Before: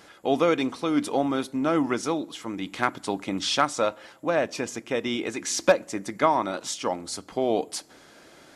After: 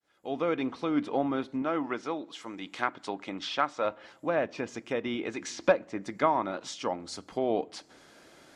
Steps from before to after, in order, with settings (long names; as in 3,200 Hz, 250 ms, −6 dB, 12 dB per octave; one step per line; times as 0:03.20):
fade in at the beginning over 0.68 s
treble cut that deepens with the level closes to 2,800 Hz, closed at −24 dBFS
0:01.62–0:03.85: low-shelf EQ 240 Hz −11.5 dB
level −4 dB